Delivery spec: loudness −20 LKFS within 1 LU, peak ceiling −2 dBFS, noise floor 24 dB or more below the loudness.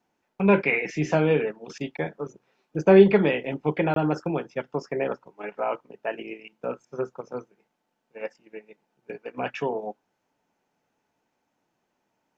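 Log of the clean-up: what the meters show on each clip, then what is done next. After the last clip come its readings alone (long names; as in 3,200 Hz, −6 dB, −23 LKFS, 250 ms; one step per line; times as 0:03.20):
number of dropouts 1; longest dropout 22 ms; integrated loudness −24.5 LKFS; sample peak −3.5 dBFS; target loudness −20.0 LKFS
→ repair the gap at 0:03.94, 22 ms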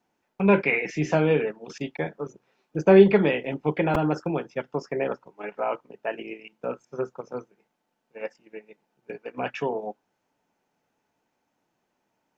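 number of dropouts 0; integrated loudness −24.5 LKFS; sample peak −3.5 dBFS; target loudness −20.0 LKFS
→ level +4.5 dB
brickwall limiter −2 dBFS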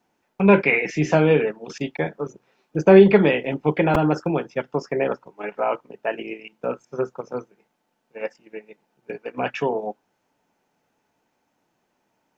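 integrated loudness −20.5 LKFS; sample peak −2.0 dBFS; background noise floor −73 dBFS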